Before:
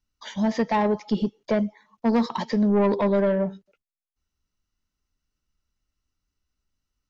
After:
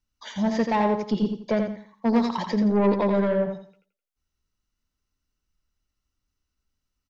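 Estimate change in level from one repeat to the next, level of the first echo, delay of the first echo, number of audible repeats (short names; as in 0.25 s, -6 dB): -11.0 dB, -6.0 dB, 85 ms, 3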